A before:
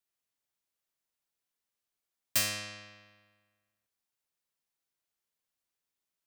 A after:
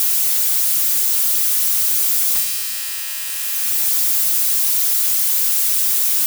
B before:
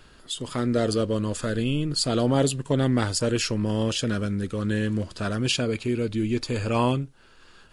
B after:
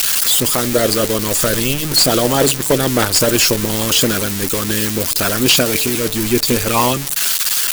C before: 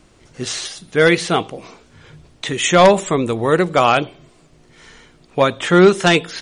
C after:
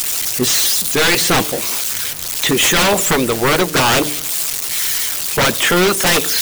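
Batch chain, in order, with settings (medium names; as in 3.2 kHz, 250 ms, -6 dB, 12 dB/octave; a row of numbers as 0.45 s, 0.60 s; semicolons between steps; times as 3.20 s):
zero-crossing glitches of -13 dBFS; harmonic-percussive split harmonic -13 dB; wavefolder -18 dBFS; de-hum 148.6 Hz, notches 4; normalise loudness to -14 LUFS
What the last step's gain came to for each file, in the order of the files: +6.5 dB, +14.0 dB, +10.5 dB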